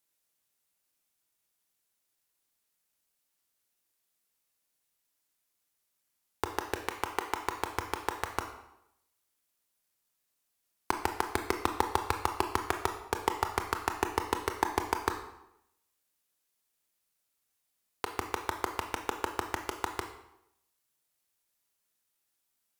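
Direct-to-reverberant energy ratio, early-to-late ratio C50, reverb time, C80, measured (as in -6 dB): 5.0 dB, 8.0 dB, 0.80 s, 10.5 dB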